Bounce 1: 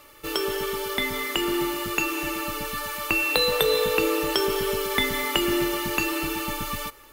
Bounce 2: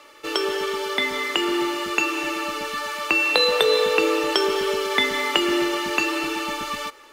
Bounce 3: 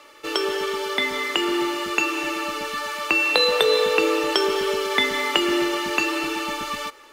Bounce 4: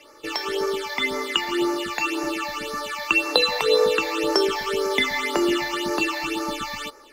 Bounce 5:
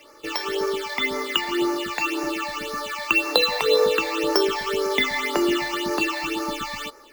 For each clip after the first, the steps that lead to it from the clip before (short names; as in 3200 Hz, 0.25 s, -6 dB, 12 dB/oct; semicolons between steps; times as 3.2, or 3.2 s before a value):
three-band isolator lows -18 dB, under 250 Hz, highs -18 dB, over 7800 Hz; gain +4 dB
nothing audible
phaser stages 8, 1.9 Hz, lowest notch 370–3200 Hz; gain +2 dB
careless resampling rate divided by 2×, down none, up hold